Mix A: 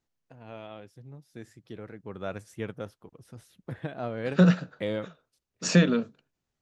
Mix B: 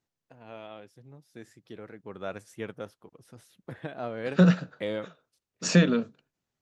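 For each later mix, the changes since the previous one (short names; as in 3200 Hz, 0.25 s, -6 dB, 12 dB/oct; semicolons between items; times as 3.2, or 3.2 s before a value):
first voice: add low shelf 130 Hz -11 dB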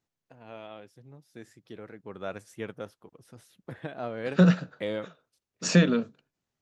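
none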